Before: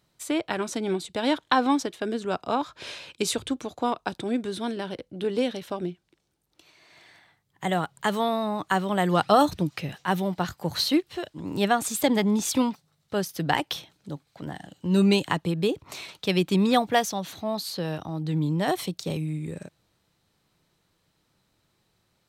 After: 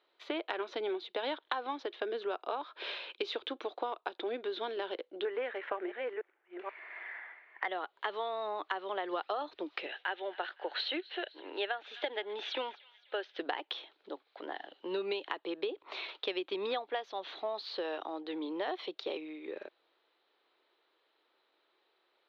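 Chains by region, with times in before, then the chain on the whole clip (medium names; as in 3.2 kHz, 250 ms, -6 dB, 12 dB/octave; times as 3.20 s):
5.25–7.68 s: chunks repeated in reverse 481 ms, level -12 dB + resonant high shelf 2.8 kHz -13 dB, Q 3 + overdrive pedal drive 11 dB, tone 7.9 kHz, clips at -11 dBFS
9.86–13.39 s: cabinet simulation 430–5300 Hz, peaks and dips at 1.1 kHz -9 dB, 1.6 kHz +6 dB, 2.9 kHz +4 dB, 4.8 kHz -7 dB + feedback echo behind a high-pass 255 ms, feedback 52%, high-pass 1.9 kHz, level -21.5 dB
whole clip: elliptic band-pass 370–3700 Hz, stop band 40 dB; compression 12:1, threshold -32 dBFS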